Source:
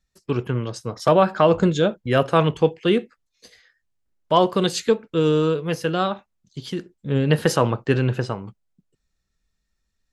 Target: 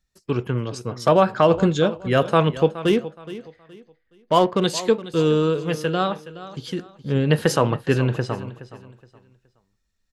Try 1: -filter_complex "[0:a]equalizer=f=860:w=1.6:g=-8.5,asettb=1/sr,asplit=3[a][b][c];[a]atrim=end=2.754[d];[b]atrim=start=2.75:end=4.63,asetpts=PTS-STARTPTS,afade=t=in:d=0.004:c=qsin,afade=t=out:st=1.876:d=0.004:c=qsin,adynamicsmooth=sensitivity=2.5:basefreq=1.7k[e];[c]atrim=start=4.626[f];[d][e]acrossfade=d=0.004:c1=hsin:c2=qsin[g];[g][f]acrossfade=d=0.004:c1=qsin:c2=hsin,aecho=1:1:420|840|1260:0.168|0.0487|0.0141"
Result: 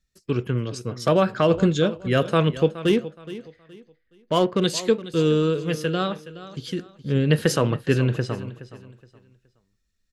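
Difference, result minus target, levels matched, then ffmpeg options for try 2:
1000 Hz band -4.0 dB
-filter_complex "[0:a]asettb=1/sr,asplit=3[a][b][c];[a]atrim=end=2.754[d];[b]atrim=start=2.75:end=4.63,asetpts=PTS-STARTPTS,afade=t=in:d=0.004:c=qsin,afade=t=out:st=1.876:d=0.004:c=qsin,adynamicsmooth=sensitivity=2.5:basefreq=1.7k[e];[c]atrim=start=4.626[f];[d][e]acrossfade=d=0.004:c1=hsin:c2=qsin[g];[g][f]acrossfade=d=0.004:c1=qsin:c2=hsin,aecho=1:1:420|840|1260:0.168|0.0487|0.0141"

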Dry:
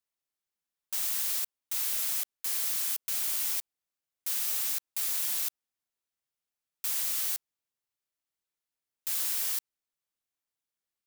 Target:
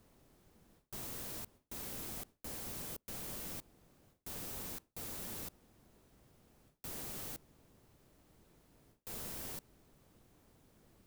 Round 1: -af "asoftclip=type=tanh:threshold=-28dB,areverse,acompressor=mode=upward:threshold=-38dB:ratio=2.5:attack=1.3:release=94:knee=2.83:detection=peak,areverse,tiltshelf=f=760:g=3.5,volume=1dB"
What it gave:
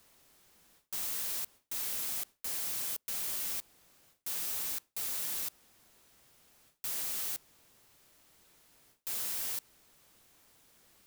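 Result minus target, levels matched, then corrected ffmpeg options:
1000 Hz band -7.5 dB
-af "asoftclip=type=tanh:threshold=-28dB,areverse,acompressor=mode=upward:threshold=-38dB:ratio=2.5:attack=1.3:release=94:knee=2.83:detection=peak,areverse,tiltshelf=f=760:g=13.5,volume=1dB"

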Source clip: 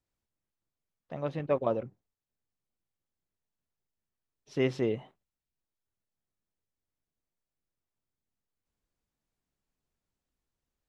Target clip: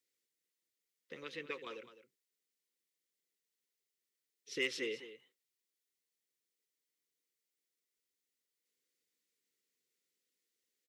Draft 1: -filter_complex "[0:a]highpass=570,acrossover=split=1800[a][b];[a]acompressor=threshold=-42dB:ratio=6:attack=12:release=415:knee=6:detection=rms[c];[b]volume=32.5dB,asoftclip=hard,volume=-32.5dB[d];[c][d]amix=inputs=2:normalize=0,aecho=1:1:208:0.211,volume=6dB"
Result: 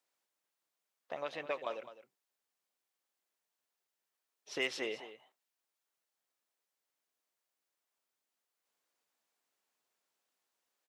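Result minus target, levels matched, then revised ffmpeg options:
1000 Hz band +8.0 dB
-filter_complex "[0:a]highpass=570,acrossover=split=1800[a][b];[a]acompressor=threshold=-42dB:ratio=6:attack=12:release=415:knee=6:detection=rms,asuperstop=centerf=970:order=20:qfactor=0.76[c];[b]volume=32.5dB,asoftclip=hard,volume=-32.5dB[d];[c][d]amix=inputs=2:normalize=0,aecho=1:1:208:0.211,volume=6dB"

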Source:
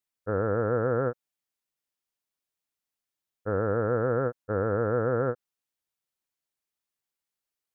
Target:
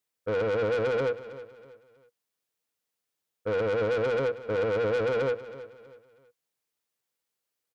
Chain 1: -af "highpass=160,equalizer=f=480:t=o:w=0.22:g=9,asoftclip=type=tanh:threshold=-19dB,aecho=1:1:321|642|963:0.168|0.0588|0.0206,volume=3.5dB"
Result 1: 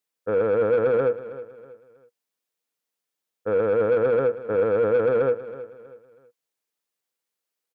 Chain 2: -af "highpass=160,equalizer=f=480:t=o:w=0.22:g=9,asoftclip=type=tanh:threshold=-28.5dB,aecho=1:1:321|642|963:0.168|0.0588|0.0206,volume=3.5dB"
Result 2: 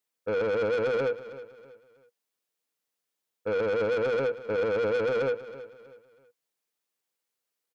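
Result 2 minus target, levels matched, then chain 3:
125 Hz band -4.5 dB
-af "highpass=74,equalizer=f=480:t=o:w=0.22:g=9,asoftclip=type=tanh:threshold=-28.5dB,aecho=1:1:321|642|963:0.168|0.0588|0.0206,volume=3.5dB"

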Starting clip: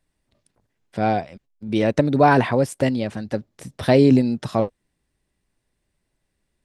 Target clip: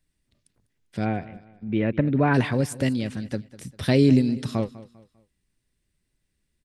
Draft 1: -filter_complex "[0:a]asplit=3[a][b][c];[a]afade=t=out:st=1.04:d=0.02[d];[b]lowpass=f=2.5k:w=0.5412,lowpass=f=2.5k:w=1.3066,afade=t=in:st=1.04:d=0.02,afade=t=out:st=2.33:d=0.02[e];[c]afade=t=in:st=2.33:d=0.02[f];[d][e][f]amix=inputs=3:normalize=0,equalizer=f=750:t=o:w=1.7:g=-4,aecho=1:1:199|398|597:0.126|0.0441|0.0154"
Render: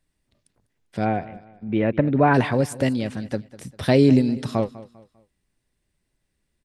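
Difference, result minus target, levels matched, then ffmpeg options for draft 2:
1000 Hz band +4.0 dB
-filter_complex "[0:a]asplit=3[a][b][c];[a]afade=t=out:st=1.04:d=0.02[d];[b]lowpass=f=2.5k:w=0.5412,lowpass=f=2.5k:w=1.3066,afade=t=in:st=1.04:d=0.02,afade=t=out:st=2.33:d=0.02[e];[c]afade=t=in:st=2.33:d=0.02[f];[d][e][f]amix=inputs=3:normalize=0,equalizer=f=750:t=o:w=1.7:g=-11,aecho=1:1:199|398|597:0.126|0.0441|0.0154"

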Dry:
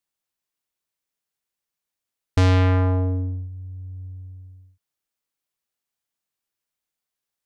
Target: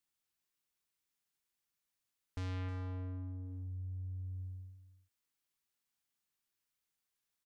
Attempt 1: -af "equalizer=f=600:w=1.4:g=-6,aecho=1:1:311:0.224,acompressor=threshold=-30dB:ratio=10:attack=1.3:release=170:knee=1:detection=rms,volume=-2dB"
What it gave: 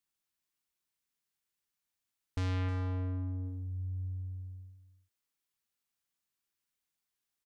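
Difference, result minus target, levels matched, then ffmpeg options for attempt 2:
compressor: peak gain reduction -6.5 dB
-af "equalizer=f=600:w=1.4:g=-6,aecho=1:1:311:0.224,acompressor=threshold=-37.5dB:ratio=10:attack=1.3:release=170:knee=1:detection=rms,volume=-2dB"

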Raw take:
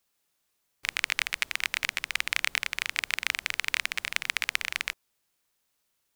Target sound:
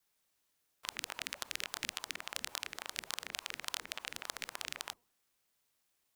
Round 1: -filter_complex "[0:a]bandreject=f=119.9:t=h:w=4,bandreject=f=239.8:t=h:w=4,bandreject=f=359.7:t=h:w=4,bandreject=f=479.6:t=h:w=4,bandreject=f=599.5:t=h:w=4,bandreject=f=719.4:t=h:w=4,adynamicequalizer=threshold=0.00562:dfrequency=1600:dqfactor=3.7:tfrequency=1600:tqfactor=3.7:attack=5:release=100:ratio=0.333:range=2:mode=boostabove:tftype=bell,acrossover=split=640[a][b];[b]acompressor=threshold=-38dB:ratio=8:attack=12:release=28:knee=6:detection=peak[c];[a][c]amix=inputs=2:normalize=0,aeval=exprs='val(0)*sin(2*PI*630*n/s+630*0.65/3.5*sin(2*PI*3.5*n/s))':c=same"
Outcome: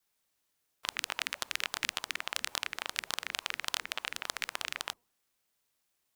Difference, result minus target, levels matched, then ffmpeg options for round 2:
compressor: peak gain reduction -9 dB
-filter_complex "[0:a]bandreject=f=119.9:t=h:w=4,bandreject=f=239.8:t=h:w=4,bandreject=f=359.7:t=h:w=4,bandreject=f=479.6:t=h:w=4,bandreject=f=599.5:t=h:w=4,bandreject=f=719.4:t=h:w=4,adynamicequalizer=threshold=0.00562:dfrequency=1600:dqfactor=3.7:tfrequency=1600:tqfactor=3.7:attack=5:release=100:ratio=0.333:range=2:mode=boostabove:tftype=bell,acrossover=split=640[a][b];[b]acompressor=threshold=-48dB:ratio=8:attack=12:release=28:knee=6:detection=peak[c];[a][c]amix=inputs=2:normalize=0,aeval=exprs='val(0)*sin(2*PI*630*n/s+630*0.65/3.5*sin(2*PI*3.5*n/s))':c=same"

